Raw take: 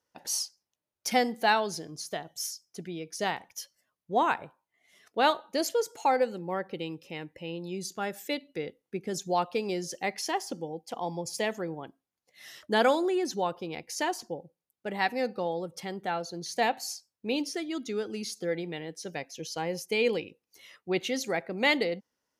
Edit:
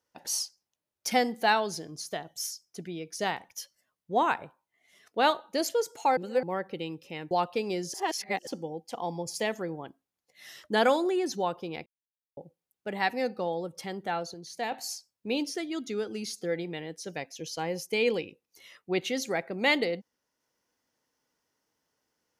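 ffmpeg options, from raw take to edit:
ffmpeg -i in.wav -filter_complex "[0:a]asplit=10[link_01][link_02][link_03][link_04][link_05][link_06][link_07][link_08][link_09][link_10];[link_01]atrim=end=6.172[link_11];[link_02]atrim=start=6.168:end=6.432,asetpts=PTS-STARTPTS,areverse[link_12];[link_03]atrim=start=6.428:end=7.312[link_13];[link_04]atrim=start=9.298:end=9.932[link_14];[link_05]atrim=start=9.928:end=10.462,asetpts=PTS-STARTPTS,areverse[link_15];[link_06]atrim=start=10.458:end=13.85,asetpts=PTS-STARTPTS,afade=type=out:start_time=3.388:duration=0.004:curve=hsin[link_16];[link_07]atrim=start=13.85:end=14.36,asetpts=PTS-STARTPTS,volume=0[link_17];[link_08]atrim=start=14.36:end=16.332,asetpts=PTS-STARTPTS,afade=type=in:duration=0.004:curve=hsin[link_18];[link_09]atrim=start=16.328:end=16.712,asetpts=PTS-STARTPTS,volume=-6.5dB[link_19];[link_10]atrim=start=16.708[link_20];[link_11][link_12]acrossfade=duration=0.004:curve1=hsin:curve2=hsin[link_21];[link_21][link_13]acrossfade=duration=0.004:curve1=hsin:curve2=hsin[link_22];[link_22][link_14]acrossfade=duration=0.004:curve1=hsin:curve2=hsin[link_23];[link_23][link_15]acrossfade=duration=0.004:curve1=hsin:curve2=hsin[link_24];[link_16][link_17][link_18]concat=n=3:v=0:a=1[link_25];[link_24][link_25]acrossfade=duration=0.004:curve1=hsin:curve2=hsin[link_26];[link_26][link_19]acrossfade=duration=0.004:curve1=hsin:curve2=hsin[link_27];[link_27][link_20]acrossfade=duration=0.004:curve1=hsin:curve2=hsin" out.wav

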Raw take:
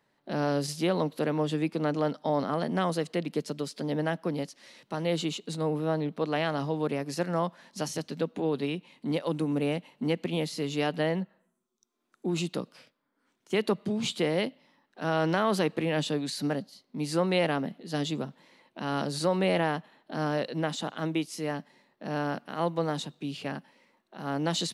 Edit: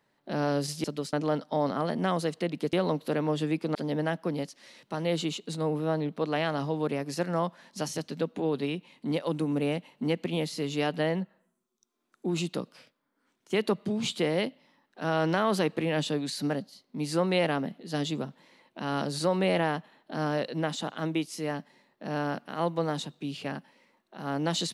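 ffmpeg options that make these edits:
ffmpeg -i in.wav -filter_complex "[0:a]asplit=5[link_01][link_02][link_03][link_04][link_05];[link_01]atrim=end=0.842[link_06];[link_02]atrim=start=3.458:end=3.752[link_07];[link_03]atrim=start=1.858:end=3.462[link_08];[link_04]atrim=start=0.838:end=1.862[link_09];[link_05]atrim=start=3.748[link_10];[link_06][link_07]acrossfade=duration=0.004:curve1=hsin:curve2=hsin[link_11];[link_11][link_08]acrossfade=duration=0.004:curve1=hsin:curve2=hsin[link_12];[link_12][link_09]acrossfade=duration=0.004:curve1=hsin:curve2=hsin[link_13];[link_13][link_10]acrossfade=duration=0.004:curve1=hsin:curve2=hsin" out.wav

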